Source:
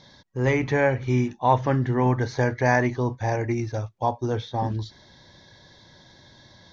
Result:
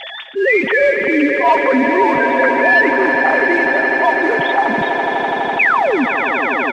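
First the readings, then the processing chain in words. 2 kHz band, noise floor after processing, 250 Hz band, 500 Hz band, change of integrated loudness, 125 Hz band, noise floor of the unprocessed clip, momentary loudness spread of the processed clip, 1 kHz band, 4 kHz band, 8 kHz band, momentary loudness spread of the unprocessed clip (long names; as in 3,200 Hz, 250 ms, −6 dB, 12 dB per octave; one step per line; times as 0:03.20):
+18.5 dB, −28 dBFS, +9.0 dB, +11.0 dB, +10.5 dB, −14.5 dB, −54 dBFS, 5 LU, +12.5 dB, +13.5 dB, can't be measured, 8 LU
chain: three sine waves on the formant tracks
sound drawn into the spectrogram fall, 0:05.59–0:06.05, 220–2,700 Hz −24 dBFS
high-shelf EQ 2,400 Hz +11 dB
noise that follows the level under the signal 21 dB
comb filter 7.5 ms, depth 53%
in parallel at −7 dB: wave folding −12 dBFS
on the sum: Chebyshev low-pass filter 3,000 Hz, order 2
on a send: echo that builds up and dies away 83 ms, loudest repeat 8, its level −14 dB
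on the sum: envelope flattener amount 50%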